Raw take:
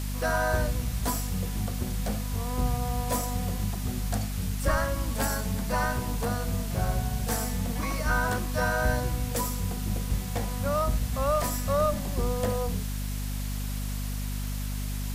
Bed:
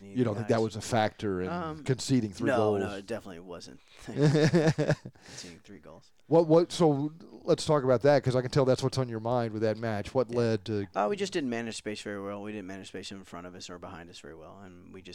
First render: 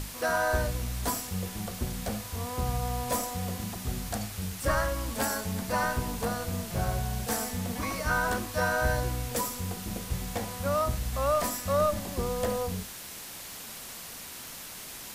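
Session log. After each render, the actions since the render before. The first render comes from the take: hum notches 50/100/150/200/250 Hz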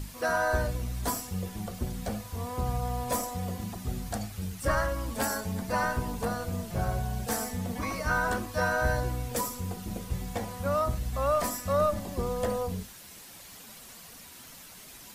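noise reduction 8 dB, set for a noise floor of -43 dBFS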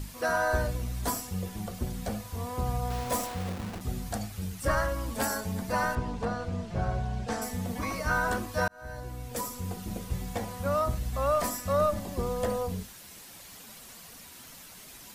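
2.90–3.81 s: send-on-delta sampling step -34.5 dBFS; 5.95–7.42 s: distance through air 110 m; 8.68–9.73 s: fade in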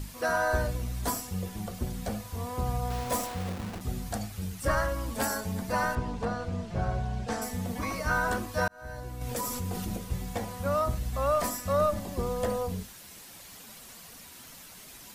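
9.21–9.96 s: level flattener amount 70%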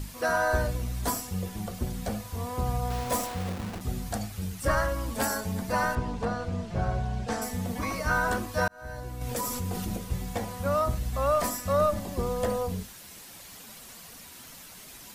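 trim +1.5 dB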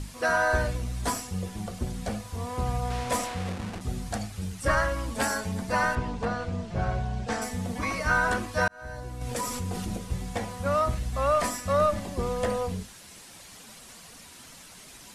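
low-pass 11 kHz 24 dB/octave; dynamic bell 2.2 kHz, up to +5 dB, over -43 dBFS, Q 0.94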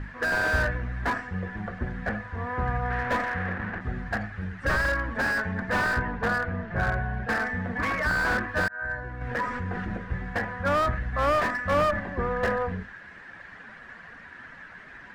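resonant low-pass 1.7 kHz, resonance Q 7.8; slew-rate limiter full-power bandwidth 89 Hz

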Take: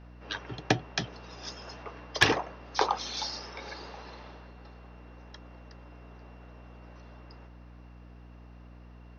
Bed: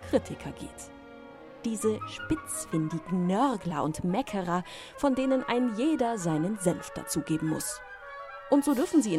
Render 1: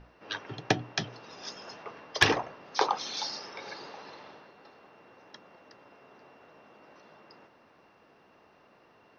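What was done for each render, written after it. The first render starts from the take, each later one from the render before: hum notches 60/120/180/240/300 Hz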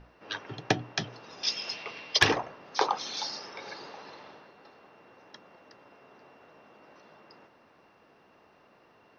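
1.43–2.19 s: high-order bell 3.5 kHz +13.5 dB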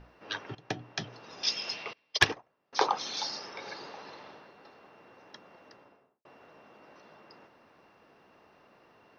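0.55–1.38 s: fade in linear, from -14.5 dB; 1.93–2.73 s: upward expansion 2.5:1, over -36 dBFS; 5.68–6.25 s: studio fade out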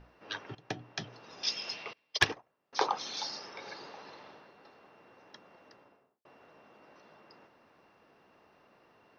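trim -3 dB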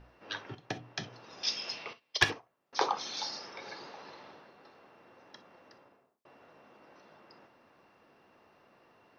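gated-style reverb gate 80 ms flat, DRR 11 dB

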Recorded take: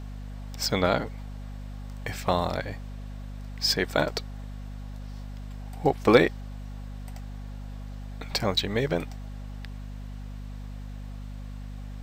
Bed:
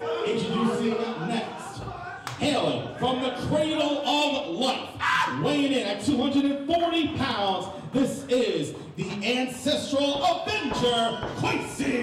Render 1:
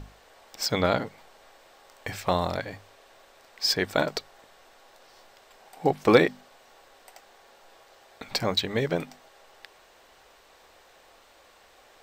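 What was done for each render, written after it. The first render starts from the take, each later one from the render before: hum notches 50/100/150/200/250 Hz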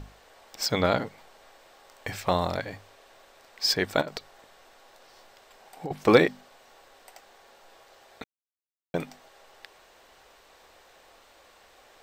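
4.01–5.91 s: compression, threshold -31 dBFS; 8.24–8.94 s: mute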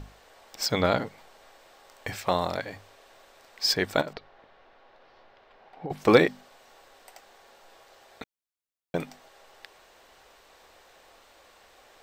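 2.14–2.76 s: bass shelf 130 Hz -8.5 dB; 4.13–5.90 s: distance through air 290 m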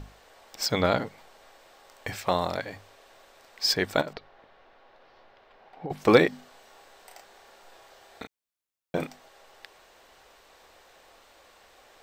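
6.29–9.07 s: doubling 32 ms -4 dB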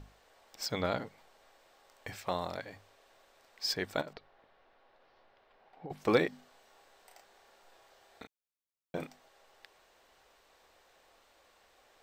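trim -9 dB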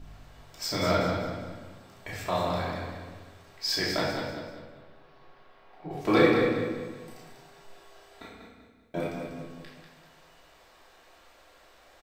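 feedback delay 194 ms, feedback 38%, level -7 dB; simulated room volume 570 m³, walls mixed, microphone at 2.9 m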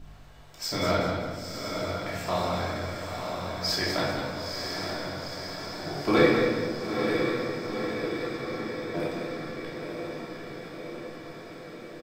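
doubling 14 ms -13 dB; echo that smears into a reverb 931 ms, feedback 69%, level -5 dB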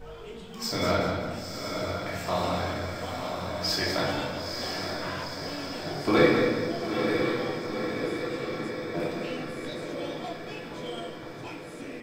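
add bed -16 dB

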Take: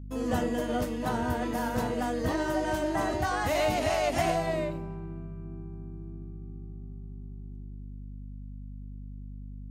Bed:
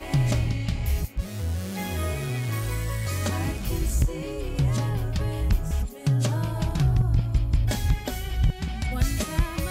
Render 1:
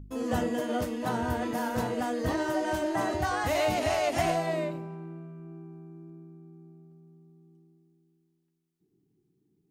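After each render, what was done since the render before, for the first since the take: de-hum 50 Hz, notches 5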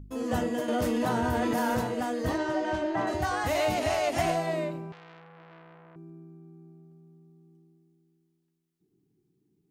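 0.68–1.78 s: level flattener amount 100%; 2.37–3.06 s: low-pass 6.1 kHz -> 3.4 kHz; 4.92–5.96 s: transformer saturation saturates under 2.4 kHz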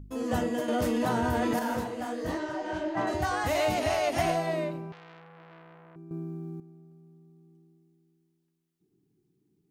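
1.59–2.97 s: detune thickener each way 54 cents; 3.81–4.96 s: band-stop 7.5 kHz, Q 7.7; 6.11–6.60 s: gain +11.5 dB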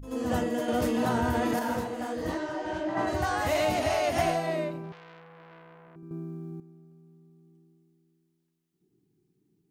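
reverse echo 81 ms -9 dB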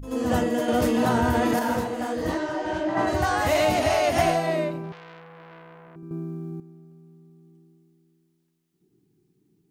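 trim +5 dB

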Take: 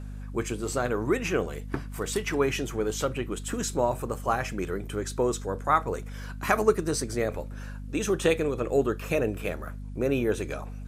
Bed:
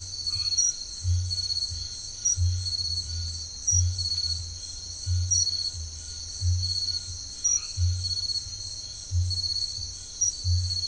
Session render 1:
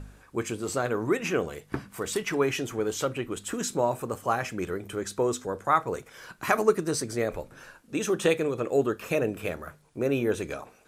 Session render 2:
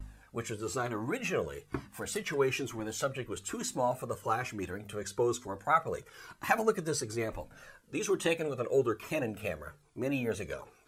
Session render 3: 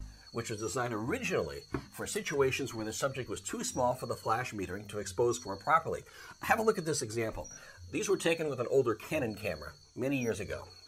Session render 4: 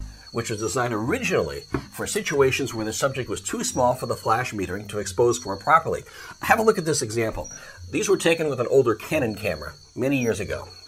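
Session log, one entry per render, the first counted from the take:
de-hum 50 Hz, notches 5
vibrato 1.1 Hz 43 cents; Shepard-style flanger falling 1.1 Hz
add bed -26 dB
trim +10 dB

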